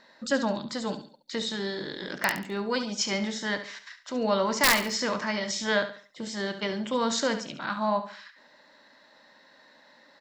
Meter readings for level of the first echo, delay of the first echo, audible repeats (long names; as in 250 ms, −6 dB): −11.0 dB, 70 ms, 3